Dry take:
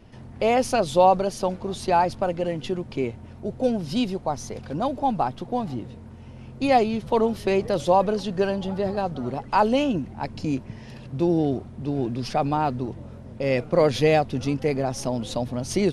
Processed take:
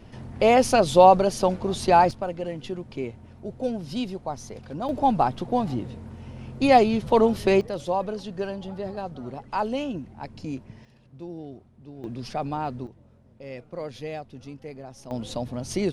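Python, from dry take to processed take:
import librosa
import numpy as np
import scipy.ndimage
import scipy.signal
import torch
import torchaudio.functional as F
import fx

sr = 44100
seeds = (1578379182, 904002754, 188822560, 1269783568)

y = fx.gain(x, sr, db=fx.steps((0.0, 3.0), (2.11, -5.0), (4.89, 2.5), (7.61, -7.0), (10.85, -16.5), (12.04, -6.0), (12.87, -15.5), (15.11, -3.5)))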